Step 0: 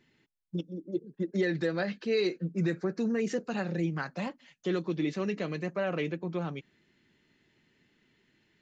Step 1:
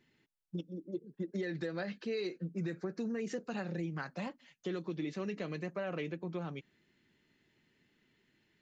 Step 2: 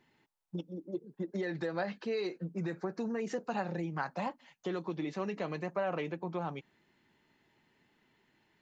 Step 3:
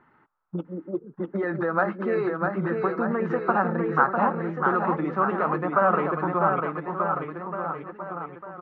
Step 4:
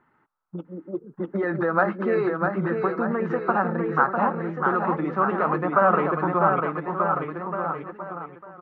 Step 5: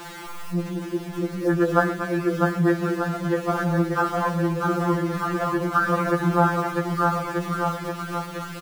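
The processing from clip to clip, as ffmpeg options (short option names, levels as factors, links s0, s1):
-af "acompressor=threshold=0.0316:ratio=4,volume=0.631"
-af "equalizer=f=870:w=1.4:g=11.5"
-af "lowpass=f=1300:t=q:w=6,aecho=1:1:650|1235|1762|2235|2662:0.631|0.398|0.251|0.158|0.1,volume=2.37"
-af "dynaudnorm=f=300:g=7:m=3.76,volume=0.596"
-af "aeval=exprs='val(0)+0.5*0.0335*sgn(val(0))':c=same,aecho=1:1:121|235:0.178|0.251,afftfilt=real='re*2.83*eq(mod(b,8),0)':imag='im*2.83*eq(mod(b,8),0)':win_size=2048:overlap=0.75"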